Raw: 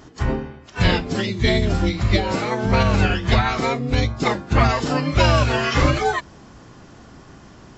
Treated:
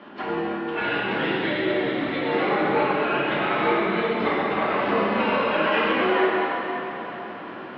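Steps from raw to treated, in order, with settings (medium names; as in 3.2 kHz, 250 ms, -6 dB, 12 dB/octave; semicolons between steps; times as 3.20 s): compression 6:1, threshold -27 dBFS, peak gain reduction 15 dB; plate-style reverb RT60 3.9 s, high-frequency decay 0.8×, DRR -7.5 dB; mistuned SSB -57 Hz 310–3300 Hz; trim +3 dB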